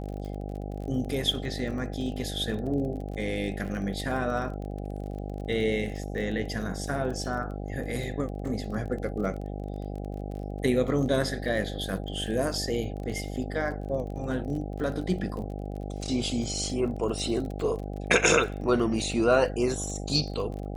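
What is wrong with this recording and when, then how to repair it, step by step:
buzz 50 Hz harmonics 16 -35 dBFS
crackle 27 per s -36 dBFS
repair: de-click; de-hum 50 Hz, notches 16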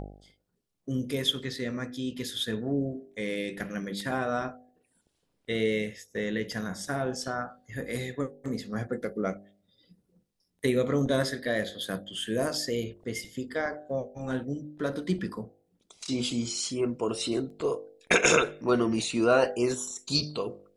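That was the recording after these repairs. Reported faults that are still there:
nothing left

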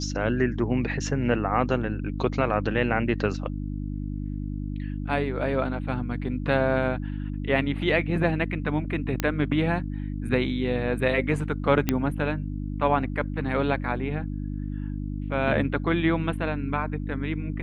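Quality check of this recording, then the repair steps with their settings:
hum 50 Hz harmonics 6 -31 dBFS
9.20 s: pop -10 dBFS
11.89 s: pop -8 dBFS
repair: de-click; de-hum 50 Hz, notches 6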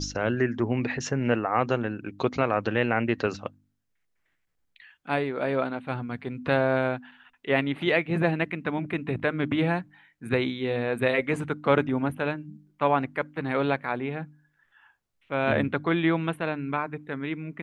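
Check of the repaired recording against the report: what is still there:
nothing left

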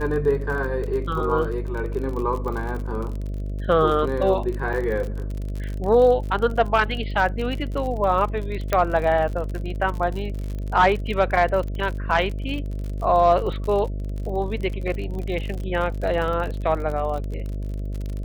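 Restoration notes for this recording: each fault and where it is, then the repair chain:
buzz 50 Hz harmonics 13 -28 dBFS
crackle 46 per s -29 dBFS
4.73 s: dropout 4.2 ms
8.73 s: pop -7 dBFS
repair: de-click; de-hum 50 Hz, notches 13; interpolate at 4.73 s, 4.2 ms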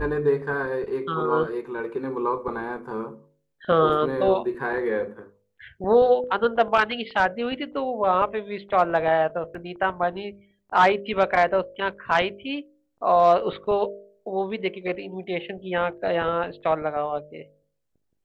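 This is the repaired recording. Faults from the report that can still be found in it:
nothing left

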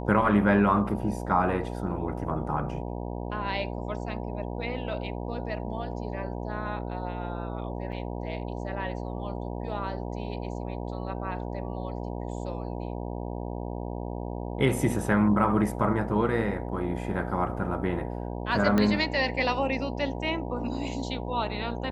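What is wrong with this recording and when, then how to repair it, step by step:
buzz 60 Hz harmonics 16 -34 dBFS
7.92–7.93 s: dropout 5.9 ms
18.78 s: pop -12 dBFS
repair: de-click; de-hum 60 Hz, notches 16; interpolate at 7.92 s, 5.9 ms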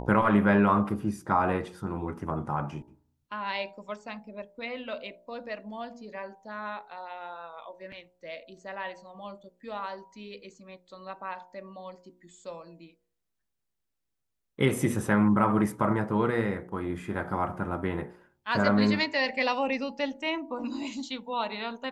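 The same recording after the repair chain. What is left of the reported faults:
18.78 s: pop

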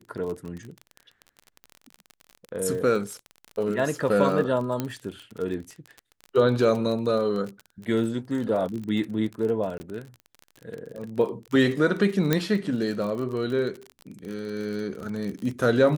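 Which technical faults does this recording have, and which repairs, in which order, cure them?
crackle 35 per s -31 dBFS
4.80 s: pop -13 dBFS
9.78–9.80 s: dropout 20 ms
12.33 s: pop -7 dBFS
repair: de-click; interpolate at 9.78 s, 20 ms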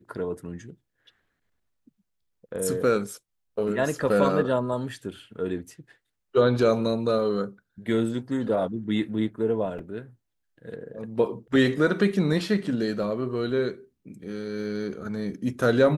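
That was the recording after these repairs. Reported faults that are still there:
nothing left

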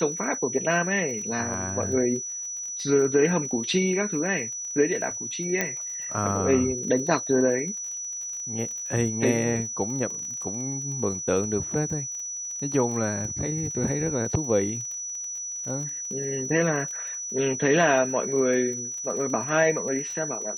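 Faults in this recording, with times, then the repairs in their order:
crackle 36 per s -34 dBFS
whine 5.9 kHz -31 dBFS
5.61 s: pop -9 dBFS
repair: de-click; band-stop 5.9 kHz, Q 30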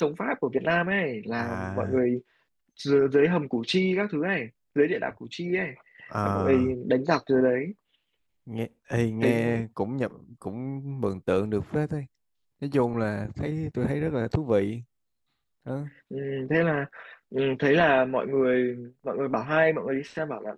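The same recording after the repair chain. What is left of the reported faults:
nothing left

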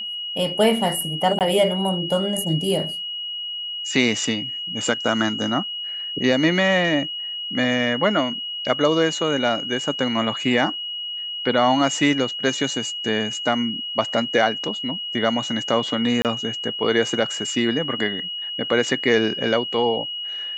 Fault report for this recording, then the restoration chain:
whine 2.9 kHz -27 dBFS
1.39–1.41 s: dropout 18 ms
16.22–16.25 s: dropout 28 ms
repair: band-stop 2.9 kHz, Q 30; interpolate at 1.39 s, 18 ms; interpolate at 16.22 s, 28 ms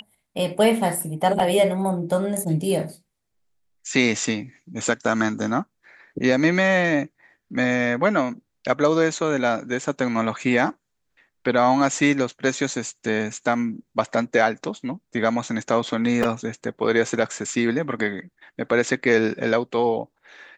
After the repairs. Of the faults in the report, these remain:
nothing left

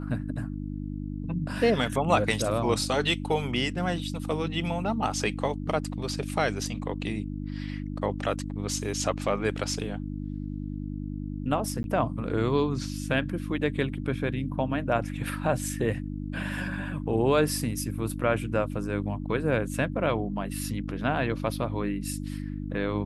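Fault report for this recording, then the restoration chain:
hum 50 Hz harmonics 6 -34 dBFS
11.83–11.84 s: dropout 11 ms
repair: de-hum 50 Hz, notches 6; interpolate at 11.83 s, 11 ms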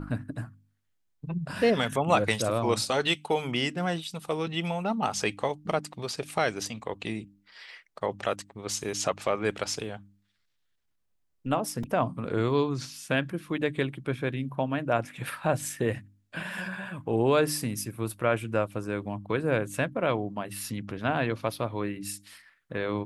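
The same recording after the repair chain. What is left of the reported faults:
nothing left

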